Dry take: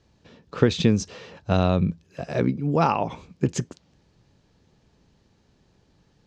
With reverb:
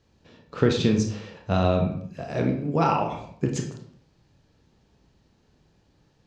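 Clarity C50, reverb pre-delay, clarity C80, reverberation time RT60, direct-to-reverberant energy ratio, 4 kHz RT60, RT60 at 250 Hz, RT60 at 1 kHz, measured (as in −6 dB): 6.5 dB, 23 ms, 10.0 dB, 0.65 s, 2.0 dB, 0.45 s, 0.80 s, 0.60 s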